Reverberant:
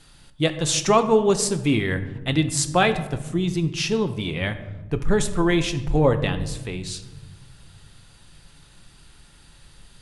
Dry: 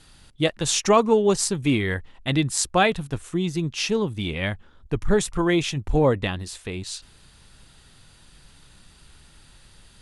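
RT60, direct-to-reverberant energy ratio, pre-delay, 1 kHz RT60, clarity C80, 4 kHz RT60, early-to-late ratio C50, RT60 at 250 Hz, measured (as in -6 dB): 1.1 s, 8.5 dB, 6 ms, 0.95 s, 14.0 dB, 0.65 s, 12.0 dB, 2.3 s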